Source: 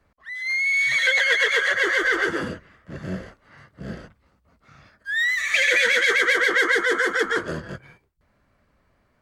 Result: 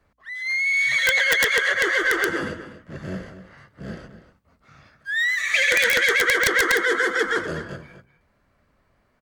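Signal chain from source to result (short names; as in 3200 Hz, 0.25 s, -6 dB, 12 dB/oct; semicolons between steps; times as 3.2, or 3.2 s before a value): notches 60/120/180/240/300 Hz; outdoor echo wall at 42 m, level -12 dB; wrapped overs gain 9 dB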